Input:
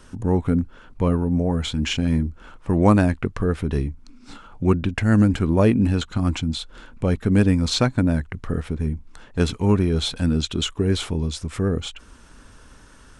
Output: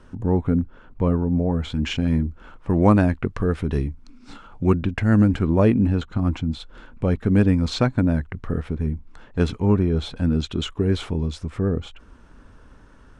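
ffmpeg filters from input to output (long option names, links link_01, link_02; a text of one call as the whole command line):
ffmpeg -i in.wav -af "asetnsamples=nb_out_samples=441:pad=0,asendcmd='1.7 lowpass f 2800;3.3 lowpass f 5000;4.84 lowpass f 2500;5.78 lowpass f 1300;6.6 lowpass f 2300;9.6 lowpass f 1300;10.33 lowpass f 2200;11.5 lowpass f 1200',lowpass=frequency=1400:poles=1" out.wav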